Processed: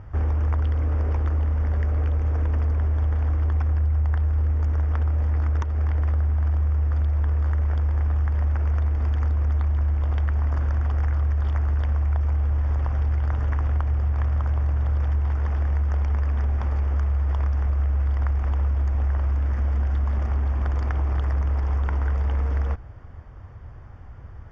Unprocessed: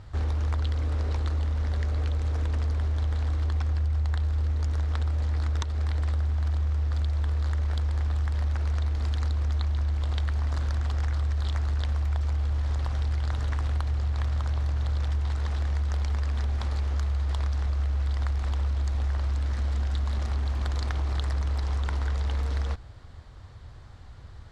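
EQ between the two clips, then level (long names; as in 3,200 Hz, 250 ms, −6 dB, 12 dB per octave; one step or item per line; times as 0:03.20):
moving average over 11 samples
+4.5 dB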